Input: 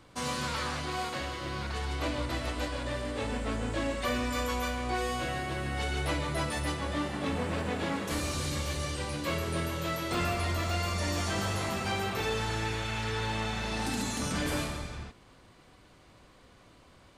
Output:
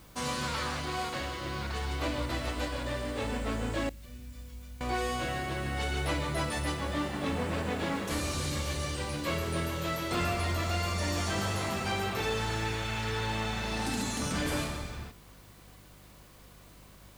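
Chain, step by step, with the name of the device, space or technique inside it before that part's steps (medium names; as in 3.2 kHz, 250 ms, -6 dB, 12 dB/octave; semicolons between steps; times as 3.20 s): 3.89–4.81 s: amplifier tone stack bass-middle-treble 10-0-1; video cassette with head-switching buzz (mains buzz 50 Hz, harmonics 4, -57 dBFS; white noise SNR 28 dB)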